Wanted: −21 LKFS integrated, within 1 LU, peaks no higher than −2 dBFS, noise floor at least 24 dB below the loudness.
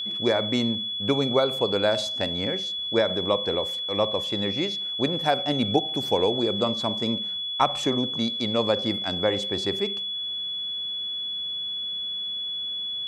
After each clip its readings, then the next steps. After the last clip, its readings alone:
crackle rate 20 per second; interfering tone 3,400 Hz; level of the tone −28 dBFS; integrated loudness −25.0 LKFS; sample peak −6.0 dBFS; target loudness −21.0 LKFS
→ click removal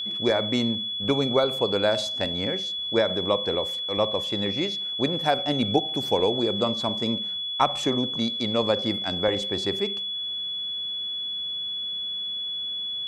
crackle rate 0 per second; interfering tone 3,400 Hz; level of the tone −28 dBFS
→ notch filter 3,400 Hz, Q 30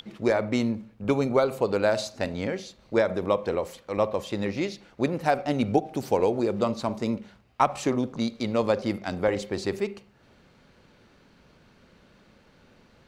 interfering tone none found; integrated loudness −27.0 LKFS; sample peak −6.5 dBFS; target loudness −21.0 LKFS
→ level +6 dB
brickwall limiter −2 dBFS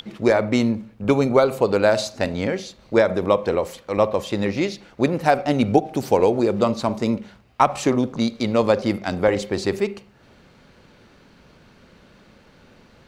integrated loudness −21.0 LKFS; sample peak −2.0 dBFS; background noise floor −53 dBFS

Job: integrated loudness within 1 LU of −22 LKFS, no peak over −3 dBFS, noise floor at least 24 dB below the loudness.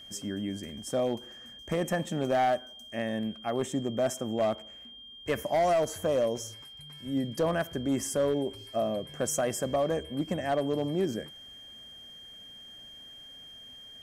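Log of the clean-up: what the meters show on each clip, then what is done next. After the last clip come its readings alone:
share of clipped samples 0.9%; peaks flattened at −21.0 dBFS; interfering tone 3,200 Hz; level of the tone −46 dBFS; integrated loudness −30.5 LKFS; sample peak −21.0 dBFS; target loudness −22.0 LKFS
→ clipped peaks rebuilt −21 dBFS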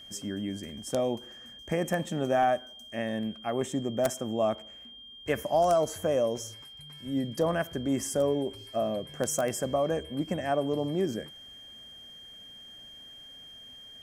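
share of clipped samples 0.0%; interfering tone 3,200 Hz; level of the tone −46 dBFS
→ notch filter 3,200 Hz, Q 30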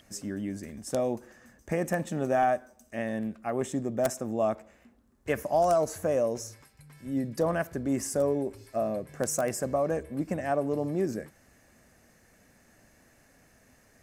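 interfering tone none found; integrated loudness −30.0 LKFS; sample peak −12.0 dBFS; target loudness −22.0 LKFS
→ level +8 dB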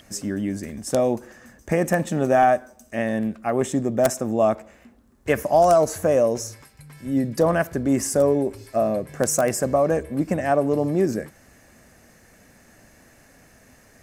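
integrated loudness −22.0 LKFS; sample peak −4.0 dBFS; background noise floor −54 dBFS

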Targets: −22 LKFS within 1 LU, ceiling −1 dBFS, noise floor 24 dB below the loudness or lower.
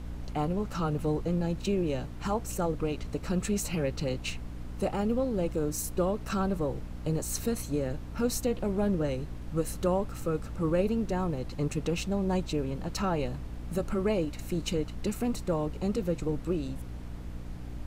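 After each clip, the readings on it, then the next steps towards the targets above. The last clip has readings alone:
mains hum 60 Hz; hum harmonics up to 300 Hz; level of the hum −39 dBFS; background noise floor −40 dBFS; target noise floor −56 dBFS; integrated loudness −31.5 LKFS; sample peak −16.0 dBFS; target loudness −22.0 LKFS
→ hum removal 60 Hz, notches 5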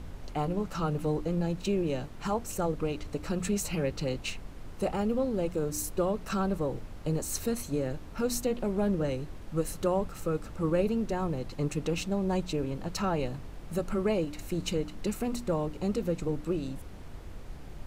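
mains hum none found; background noise floor −44 dBFS; target noise floor −56 dBFS
→ noise reduction from a noise print 12 dB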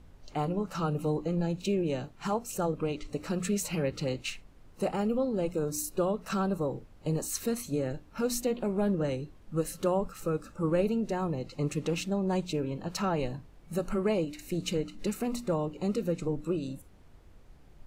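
background noise floor −55 dBFS; target noise floor −56 dBFS
→ noise reduction from a noise print 6 dB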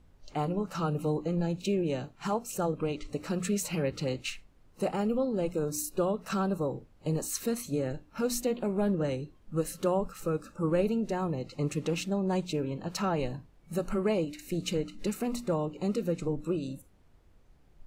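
background noise floor −60 dBFS; integrated loudness −32.0 LKFS; sample peak −16.5 dBFS; target loudness −22.0 LKFS
→ level +10 dB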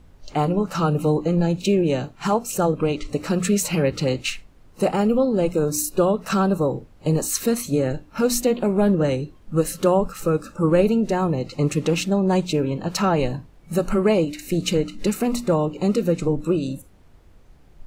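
integrated loudness −22.0 LKFS; sample peak −6.5 dBFS; background noise floor −50 dBFS

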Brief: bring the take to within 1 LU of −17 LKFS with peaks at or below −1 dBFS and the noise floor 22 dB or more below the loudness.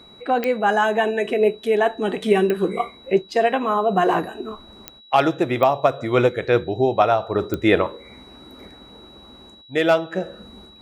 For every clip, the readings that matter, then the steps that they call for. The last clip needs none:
number of clicks 5; interfering tone 3,900 Hz; level of the tone −46 dBFS; integrated loudness −20.5 LKFS; sample peak −3.5 dBFS; target loudness −17.0 LKFS
→ click removal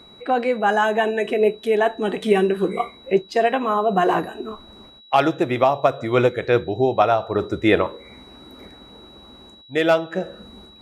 number of clicks 0; interfering tone 3,900 Hz; level of the tone −46 dBFS
→ notch filter 3,900 Hz, Q 30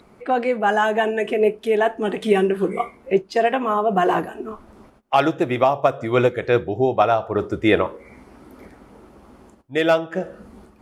interfering tone none found; integrated loudness −20.5 LKFS; sample peak −3.5 dBFS; target loudness −17.0 LKFS
→ level +3.5 dB
brickwall limiter −1 dBFS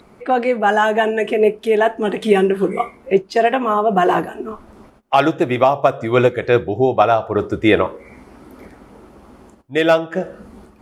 integrated loudness −17.0 LKFS; sample peak −1.0 dBFS; background noise floor −49 dBFS

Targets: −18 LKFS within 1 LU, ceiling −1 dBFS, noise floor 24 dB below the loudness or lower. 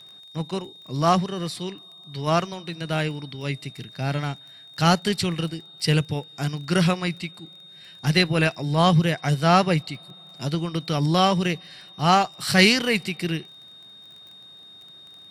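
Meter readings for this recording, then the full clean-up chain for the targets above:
crackle rate 19 per second; interfering tone 3,700 Hz; level of the tone −44 dBFS; integrated loudness −23.0 LKFS; sample peak −4.0 dBFS; target loudness −18.0 LKFS
→ click removal
notch filter 3,700 Hz, Q 30
level +5 dB
brickwall limiter −1 dBFS

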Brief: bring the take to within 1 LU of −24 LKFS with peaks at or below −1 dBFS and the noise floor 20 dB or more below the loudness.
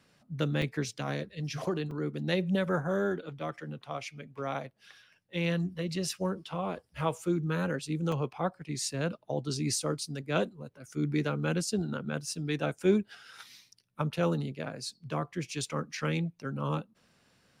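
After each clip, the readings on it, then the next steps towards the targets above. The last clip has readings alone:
number of dropouts 3; longest dropout 2.5 ms; integrated loudness −33.0 LKFS; sample peak −14.0 dBFS; target loudness −24.0 LKFS
→ repair the gap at 0:00.62/0:01.91/0:08.12, 2.5 ms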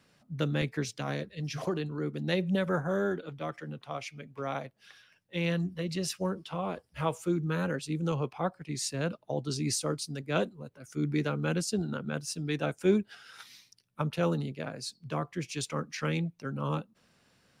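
number of dropouts 0; integrated loudness −33.0 LKFS; sample peak −14.0 dBFS; target loudness −24.0 LKFS
→ level +9 dB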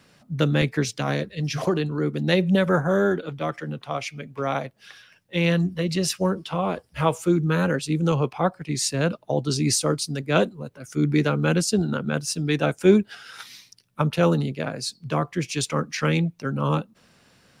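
integrated loudness −24.0 LKFS; sample peak −5.0 dBFS; background noise floor −60 dBFS

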